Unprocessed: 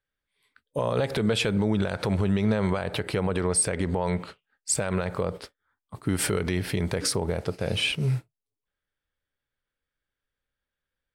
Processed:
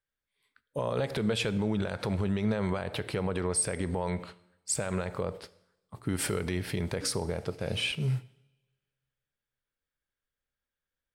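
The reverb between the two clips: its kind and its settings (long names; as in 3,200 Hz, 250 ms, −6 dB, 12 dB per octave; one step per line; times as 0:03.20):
coupled-rooms reverb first 0.83 s, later 2.1 s, from −24 dB, DRR 16 dB
level −5 dB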